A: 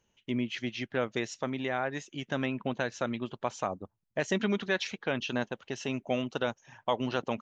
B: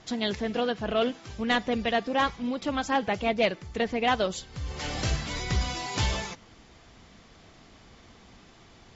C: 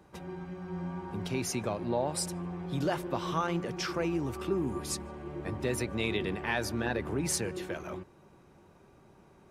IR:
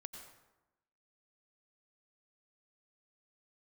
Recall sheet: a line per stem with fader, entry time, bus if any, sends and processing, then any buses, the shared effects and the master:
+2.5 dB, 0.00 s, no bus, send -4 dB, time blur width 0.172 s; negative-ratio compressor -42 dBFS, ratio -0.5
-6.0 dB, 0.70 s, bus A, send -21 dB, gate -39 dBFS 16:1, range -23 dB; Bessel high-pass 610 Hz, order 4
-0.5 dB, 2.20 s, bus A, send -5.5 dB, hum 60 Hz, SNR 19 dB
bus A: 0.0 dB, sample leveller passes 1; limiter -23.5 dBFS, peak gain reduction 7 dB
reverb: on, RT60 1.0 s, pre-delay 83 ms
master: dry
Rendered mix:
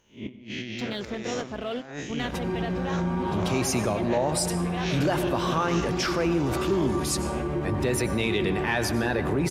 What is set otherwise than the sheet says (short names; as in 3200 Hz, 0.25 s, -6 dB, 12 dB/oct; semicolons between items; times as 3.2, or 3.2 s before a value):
stem B: missing Bessel high-pass 610 Hz, order 4; stem C -0.5 dB -> +11.0 dB